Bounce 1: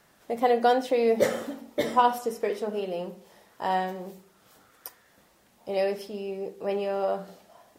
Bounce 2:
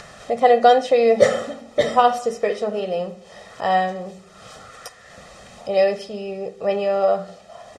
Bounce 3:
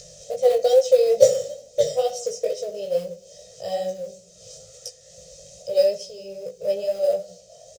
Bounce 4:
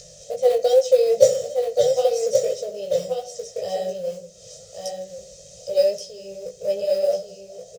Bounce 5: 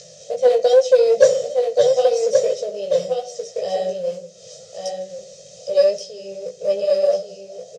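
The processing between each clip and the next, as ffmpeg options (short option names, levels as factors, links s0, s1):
-af "lowpass=f=8200:w=0.5412,lowpass=f=8200:w=1.3066,aecho=1:1:1.6:0.65,acompressor=mode=upward:threshold=0.0141:ratio=2.5,volume=2"
-filter_complex "[0:a]firequalizer=gain_entry='entry(110,0);entry(160,4);entry(240,-27);entry(520,9);entry(920,-28);entry(2800,-5);entry(6200,14);entry(9800,2)':delay=0.05:min_phase=1,asplit=2[s0][s1];[s1]acrusher=bits=4:mode=log:mix=0:aa=0.000001,volume=0.562[s2];[s0][s2]amix=inputs=2:normalize=0,flanger=delay=16:depth=4.3:speed=2.3,volume=0.501"
-af "aecho=1:1:1126:0.531"
-af "aeval=exprs='(tanh(2*val(0)+0.1)-tanh(0.1))/2':c=same,highpass=160,lowpass=6100,volume=1.58"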